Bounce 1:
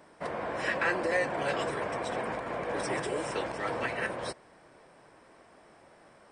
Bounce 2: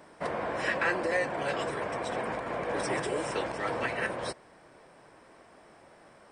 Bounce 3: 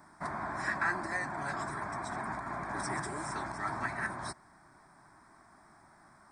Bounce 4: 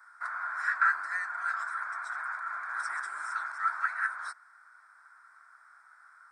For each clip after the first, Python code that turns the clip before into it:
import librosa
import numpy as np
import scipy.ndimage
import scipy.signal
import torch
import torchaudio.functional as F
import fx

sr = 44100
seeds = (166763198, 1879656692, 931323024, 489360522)

y1 = fx.rider(x, sr, range_db=10, speed_s=2.0)
y2 = fx.fixed_phaser(y1, sr, hz=1200.0, stages=4)
y3 = fx.highpass_res(y2, sr, hz=1400.0, q=8.9)
y3 = F.gain(torch.from_numpy(y3), -6.0).numpy()